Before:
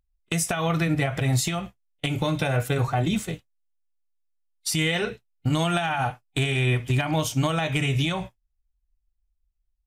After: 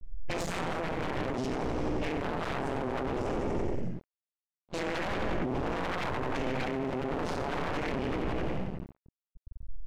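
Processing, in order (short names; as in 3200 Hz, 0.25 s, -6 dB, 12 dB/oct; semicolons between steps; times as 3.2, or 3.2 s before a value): inharmonic rescaling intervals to 91%; feedback echo 89 ms, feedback 59%, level -8 dB; compressor 2.5:1, threshold -38 dBFS, peak gain reduction 13.5 dB; tilt -3.5 dB/oct; shoebox room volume 96 m³, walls mixed, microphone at 0.95 m; half-wave rectifier; limiter -26 dBFS, peak gain reduction 14.5 dB; sine folder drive 9 dB, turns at -26 dBFS; low-pass opened by the level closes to 620 Hz, open at -33.5 dBFS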